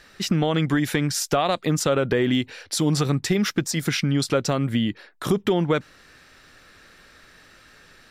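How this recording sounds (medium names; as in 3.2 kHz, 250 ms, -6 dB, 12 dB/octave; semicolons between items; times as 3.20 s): noise floor -53 dBFS; spectral tilt -5.0 dB/octave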